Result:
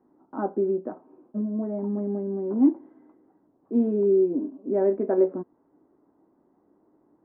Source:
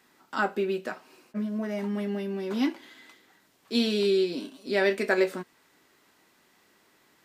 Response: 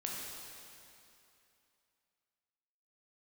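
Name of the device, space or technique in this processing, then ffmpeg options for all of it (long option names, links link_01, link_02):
under water: -af "lowpass=frequency=900:width=0.5412,lowpass=frequency=900:width=1.3066,equalizer=frequency=300:width_type=o:width=0.56:gain=10"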